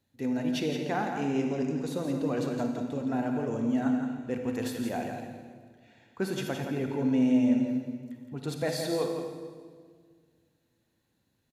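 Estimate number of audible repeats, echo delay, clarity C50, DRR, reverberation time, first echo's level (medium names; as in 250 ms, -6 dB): 1, 169 ms, 3.0 dB, 2.5 dB, 1.8 s, -7.5 dB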